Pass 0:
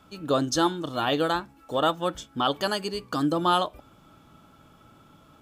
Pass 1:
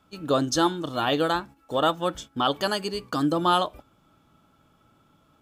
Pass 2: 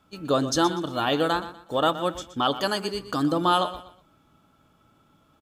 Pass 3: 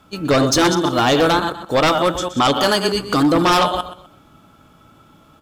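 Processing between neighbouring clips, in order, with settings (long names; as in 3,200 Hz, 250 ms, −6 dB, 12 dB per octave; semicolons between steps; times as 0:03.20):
noise gate −43 dBFS, range −8 dB; level +1 dB
repeating echo 122 ms, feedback 30%, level −13.5 dB
delay that plays each chunk backwards 127 ms, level −10 dB; sine wavefolder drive 9 dB, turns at −8.5 dBFS; level −1.5 dB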